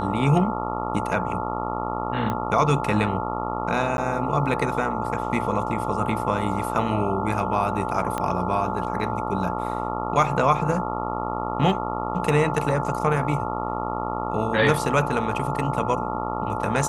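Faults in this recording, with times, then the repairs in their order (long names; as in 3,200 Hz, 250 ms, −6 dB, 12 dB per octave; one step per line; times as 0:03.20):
mains buzz 60 Hz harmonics 23 −29 dBFS
whistle 870 Hz −30 dBFS
0:02.30: click −14 dBFS
0:03.97–0:03.98: drop-out 11 ms
0:08.18: click −13 dBFS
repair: click removal
notch filter 870 Hz, Q 30
hum removal 60 Hz, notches 23
repair the gap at 0:03.97, 11 ms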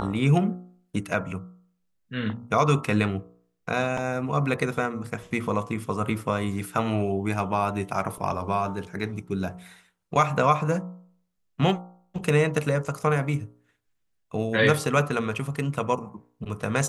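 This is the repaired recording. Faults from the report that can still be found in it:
0:08.18: click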